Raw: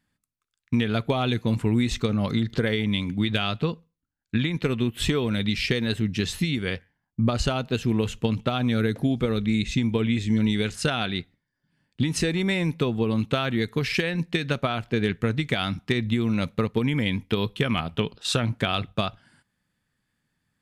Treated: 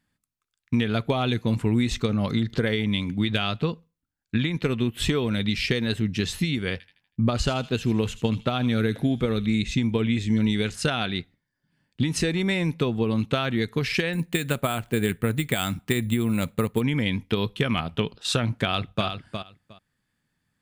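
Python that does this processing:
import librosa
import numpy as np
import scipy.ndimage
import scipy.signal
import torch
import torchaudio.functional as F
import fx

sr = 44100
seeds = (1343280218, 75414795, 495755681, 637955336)

y = fx.echo_wet_highpass(x, sr, ms=80, feedback_pct=44, hz=2400.0, wet_db=-12, at=(6.72, 9.62))
y = fx.resample_bad(y, sr, factor=4, down='filtered', up='hold', at=(14.13, 16.81))
y = fx.echo_throw(y, sr, start_s=18.64, length_s=0.42, ms=360, feedback_pct=15, wet_db=-7.5)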